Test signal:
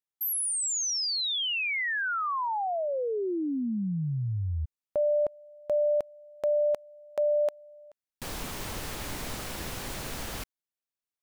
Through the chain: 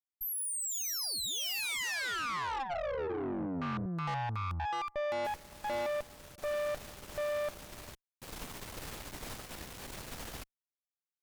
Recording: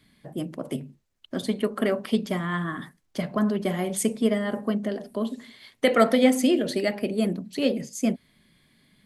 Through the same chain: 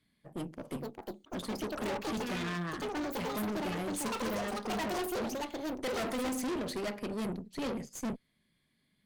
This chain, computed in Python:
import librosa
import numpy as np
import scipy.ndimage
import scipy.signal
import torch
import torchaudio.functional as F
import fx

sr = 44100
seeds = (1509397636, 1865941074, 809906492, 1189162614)

y = fx.echo_pitch(x, sr, ms=569, semitones=6, count=2, db_per_echo=-3.0)
y = fx.tube_stage(y, sr, drive_db=32.0, bias=0.75)
y = fx.upward_expand(y, sr, threshold_db=-51.0, expansion=1.5)